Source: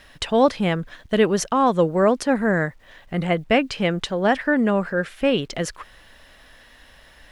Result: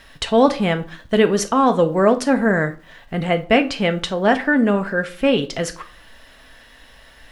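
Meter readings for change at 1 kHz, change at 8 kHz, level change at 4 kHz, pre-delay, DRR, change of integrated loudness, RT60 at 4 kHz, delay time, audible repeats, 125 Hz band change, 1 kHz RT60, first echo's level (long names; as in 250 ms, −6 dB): +2.5 dB, +2.5 dB, +3.0 dB, 4 ms, 6.5 dB, +3.0 dB, 0.30 s, no echo audible, no echo audible, +1.5 dB, 0.40 s, no echo audible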